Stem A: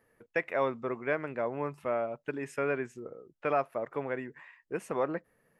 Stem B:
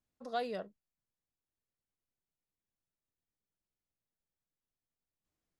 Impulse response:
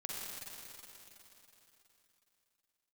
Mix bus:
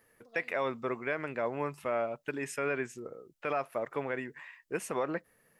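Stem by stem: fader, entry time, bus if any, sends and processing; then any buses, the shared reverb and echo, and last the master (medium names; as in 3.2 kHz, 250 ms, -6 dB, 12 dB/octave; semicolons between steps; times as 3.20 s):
-0.5 dB, 0.00 s, no send, treble shelf 2.2 kHz +10 dB
-16.0 dB, 0.00 s, no send, none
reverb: none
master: peak limiter -20.5 dBFS, peak gain reduction 6 dB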